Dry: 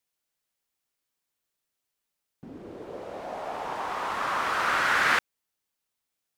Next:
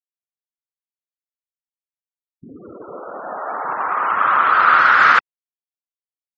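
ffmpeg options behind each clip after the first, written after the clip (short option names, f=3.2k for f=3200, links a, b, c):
-af "equalizer=f=1.3k:t=o:w=0.68:g=12.5,afftfilt=real='re*gte(hypot(re,im),0.02)':imag='im*gte(hypot(re,im),0.02)':win_size=1024:overlap=0.75,alimiter=level_in=5.5dB:limit=-1dB:release=50:level=0:latency=1,volume=-1dB"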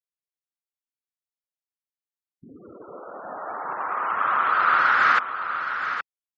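-af "aecho=1:1:819:0.355,volume=-7dB"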